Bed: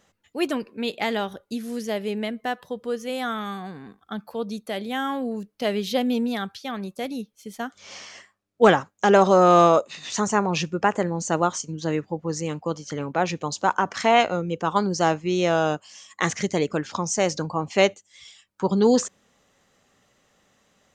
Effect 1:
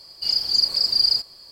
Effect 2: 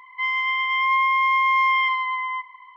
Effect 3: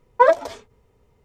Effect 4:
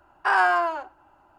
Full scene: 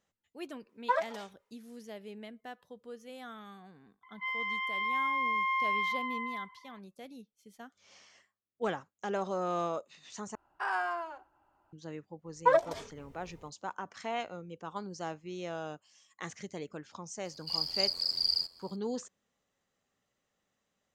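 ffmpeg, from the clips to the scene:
-filter_complex "[3:a]asplit=2[a][b];[0:a]volume=-18dB[c];[a]highpass=810[d];[b]dynaudnorm=f=150:g=3:m=14dB[e];[1:a]aeval=exprs='val(0)*sin(2*PI*43*n/s)':c=same[f];[c]asplit=2[g][h];[g]atrim=end=10.354[i];[4:a]atrim=end=1.38,asetpts=PTS-STARTPTS,volume=-13dB[j];[h]atrim=start=11.726[k];[d]atrim=end=1.24,asetpts=PTS-STARTPTS,volume=-11.5dB,afade=t=in:d=0.004:c=hsin,afade=t=out:st=1.236:d=0.004:c=hsin,adelay=690[l];[2:a]atrim=end=2.76,asetpts=PTS-STARTPTS,volume=-11.5dB,afade=t=in:d=0.004:c=hsin,afade=t=out:st=2.756:d=0.004:c=hsin,adelay=4030[m];[e]atrim=end=1.24,asetpts=PTS-STARTPTS,volume=-11dB,afade=t=in:d=0.004:c=hsin,afade=t=out:st=1.236:d=0.004:c=hsin,adelay=12260[n];[f]atrim=end=1.51,asetpts=PTS-STARTPTS,volume=-8.5dB,afade=t=in:d=0.004:c=hsin,afade=t=out:st=1.506:d=0.004:c=hsin,adelay=17250[o];[i][j]acrossfade=d=0.004:c1=hsin:c2=hsin[p];[p][k]acrossfade=d=0.004:c1=hsin:c2=hsin[q];[q][l][m][n][o]amix=inputs=5:normalize=0"

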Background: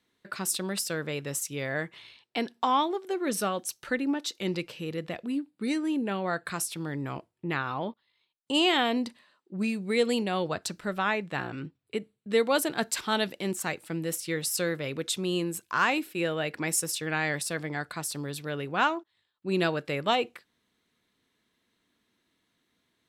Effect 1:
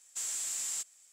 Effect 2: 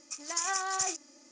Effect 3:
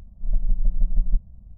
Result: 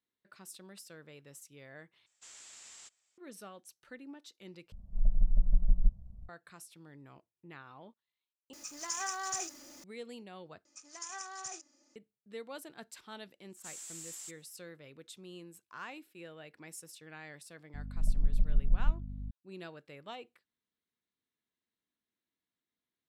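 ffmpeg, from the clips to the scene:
-filter_complex "[1:a]asplit=2[a][b];[3:a]asplit=2[c][d];[2:a]asplit=2[e][f];[0:a]volume=-20dB[g];[a]lowpass=4.6k[h];[e]aeval=exprs='val(0)+0.5*0.00631*sgn(val(0))':c=same[i];[d]aeval=exprs='val(0)+0.0224*(sin(2*PI*50*n/s)+sin(2*PI*2*50*n/s)/2+sin(2*PI*3*50*n/s)/3+sin(2*PI*4*50*n/s)/4+sin(2*PI*5*50*n/s)/5)':c=same[j];[g]asplit=5[k][l][m][n][o];[k]atrim=end=2.064[p];[h]atrim=end=1.12,asetpts=PTS-STARTPTS,volume=-8.5dB[q];[l]atrim=start=3.176:end=4.724[r];[c]atrim=end=1.57,asetpts=PTS-STARTPTS,volume=-5dB[s];[m]atrim=start=6.286:end=8.534[t];[i]atrim=end=1.31,asetpts=PTS-STARTPTS,volume=-6dB[u];[n]atrim=start=9.836:end=10.654[v];[f]atrim=end=1.31,asetpts=PTS-STARTPTS,volume=-12dB[w];[o]atrim=start=11.956[x];[b]atrim=end=1.12,asetpts=PTS-STARTPTS,volume=-10.5dB,afade=t=in:d=0.1,afade=t=out:st=1.02:d=0.1,adelay=594468S[y];[j]atrim=end=1.57,asetpts=PTS-STARTPTS,volume=-7dB,afade=t=in:d=0.004:c=hsin,afade=t=out:st=1.566:d=0.004:c=hsin,adelay=17740[z];[p][q]acrossfade=d=0.004:c1=hsin:c2=hsin[aa];[aa][r]acrossfade=d=0.004:c1=hsin:c2=hsin[ab];[ab][s]acrossfade=d=0.004:c1=hsin:c2=hsin[ac];[ac][t]acrossfade=d=0.004:c1=hsin:c2=hsin[ad];[ad][u]acrossfade=d=0.004:c1=hsin:c2=hsin[ae];[ae][v]acrossfade=d=0.004:c1=hsin:c2=hsin[af];[af][w]acrossfade=d=0.004:c1=hsin:c2=hsin[ag];[ag][x]acrossfade=d=0.004:c1=hsin:c2=hsin[ah];[ah][y][z]amix=inputs=3:normalize=0"

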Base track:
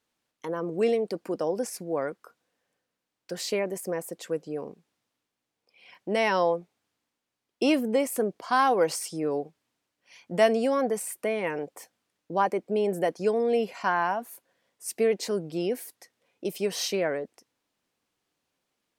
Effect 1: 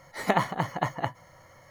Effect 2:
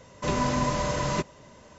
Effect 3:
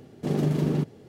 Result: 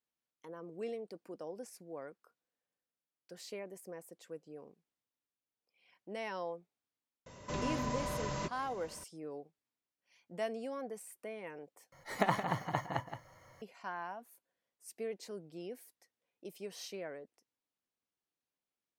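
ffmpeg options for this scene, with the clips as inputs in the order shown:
-filter_complex "[0:a]volume=-16.5dB[a];[2:a]acompressor=threshold=-45dB:ratio=1.5:attack=1:release=120:knee=1:detection=peak[b];[1:a]aecho=1:1:171:0.355[c];[a]asplit=2[d][e];[d]atrim=end=11.924[f];[c]atrim=end=1.7,asetpts=PTS-STARTPTS,volume=-7dB[g];[e]atrim=start=13.616[h];[b]atrim=end=1.78,asetpts=PTS-STARTPTS,volume=-2.5dB,afade=t=in:d=0.004:c=hsin,afade=t=out:st=1.776:d=0.004:c=hsin,adelay=7260[i];[f][g]acrossfade=d=0.004:c1=hsin:c2=hsin[j];[j][h]acrossfade=d=0.004:c1=hsin:c2=hsin[k];[k][i]amix=inputs=2:normalize=0"

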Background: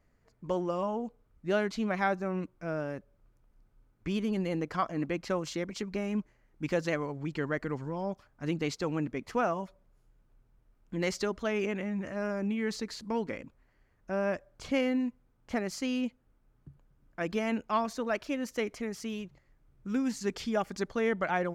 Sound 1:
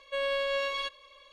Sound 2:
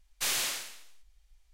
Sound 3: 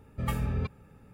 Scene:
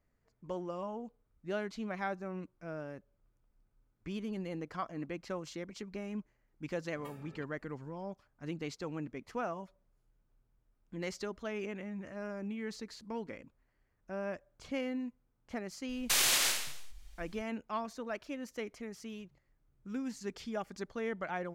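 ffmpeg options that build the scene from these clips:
-filter_complex "[0:a]volume=-8dB[a];[3:a]highpass=280[b];[2:a]alimiter=level_in=28dB:limit=-1dB:release=50:level=0:latency=1[c];[b]atrim=end=1.13,asetpts=PTS-STARTPTS,volume=-16dB,afade=t=in:d=0.004:c=hsin,afade=t=out:st=1.126:d=0.004:c=hsin,adelay=6770[d];[c]atrim=end=1.53,asetpts=PTS-STARTPTS,volume=-18dB,afade=t=in:d=0.004:c=hsin,afade=t=out:st=1.526:d=0.004:c=hsin,adelay=15890[e];[a][d][e]amix=inputs=3:normalize=0"

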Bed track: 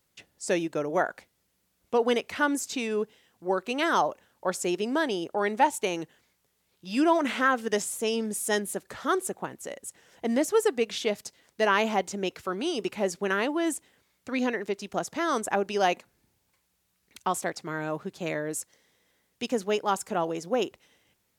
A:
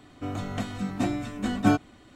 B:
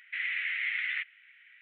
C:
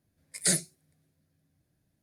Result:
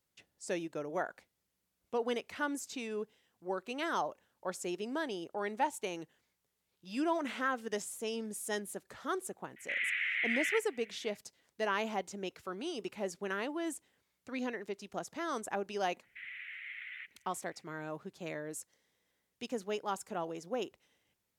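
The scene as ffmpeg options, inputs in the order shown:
-filter_complex "[2:a]asplit=2[a][b];[0:a]volume=-10dB[c];[a]atrim=end=1.61,asetpts=PTS-STARTPTS,volume=-1.5dB,afade=t=in:d=0.004:c=hsin,afade=t=out:st=1.606:d=0.004:c=hsin,adelay=9560[d];[b]atrim=end=1.61,asetpts=PTS-STARTPTS,volume=-13.5dB,afade=t=in:d=0.004:c=hsin,afade=t=out:st=1.606:d=0.004:c=hsin,adelay=16030[e];[c][d][e]amix=inputs=3:normalize=0"

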